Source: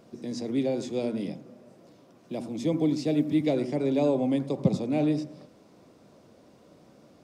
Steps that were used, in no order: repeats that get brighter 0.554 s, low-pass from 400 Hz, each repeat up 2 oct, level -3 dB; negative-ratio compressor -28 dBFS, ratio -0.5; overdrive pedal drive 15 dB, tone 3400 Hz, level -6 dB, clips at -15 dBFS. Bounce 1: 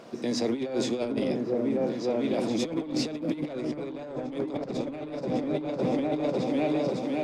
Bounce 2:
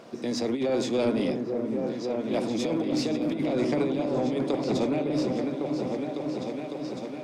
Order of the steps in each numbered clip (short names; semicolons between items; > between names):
repeats that get brighter > overdrive pedal > negative-ratio compressor; negative-ratio compressor > repeats that get brighter > overdrive pedal